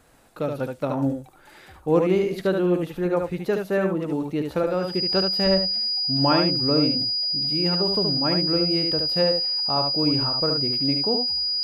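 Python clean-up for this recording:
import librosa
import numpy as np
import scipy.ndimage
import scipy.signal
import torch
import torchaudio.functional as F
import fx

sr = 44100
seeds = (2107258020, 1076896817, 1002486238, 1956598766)

y = fx.notch(x, sr, hz=4900.0, q=30.0)
y = fx.fix_echo_inverse(y, sr, delay_ms=73, level_db=-5.0)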